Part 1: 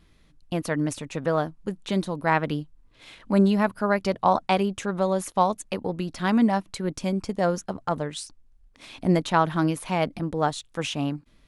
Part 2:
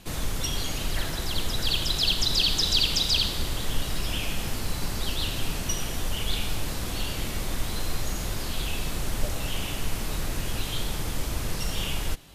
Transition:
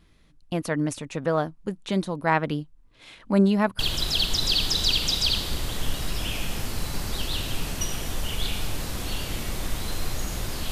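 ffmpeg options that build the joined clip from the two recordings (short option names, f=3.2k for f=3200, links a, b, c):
-filter_complex "[0:a]apad=whole_dur=10.71,atrim=end=10.71,atrim=end=3.792[a];[1:a]atrim=start=1.668:end=8.59[b];[a][b]acrossfade=d=0.004:c1=hsin:c2=hsin"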